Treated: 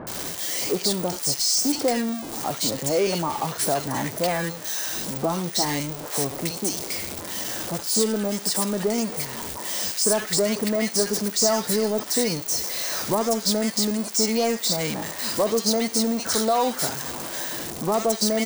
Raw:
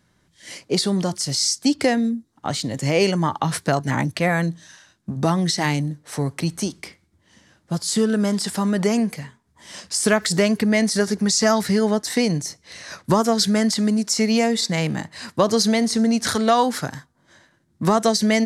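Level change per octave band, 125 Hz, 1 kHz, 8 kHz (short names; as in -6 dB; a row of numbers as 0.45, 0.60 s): -8.5, -3.5, +2.5 dB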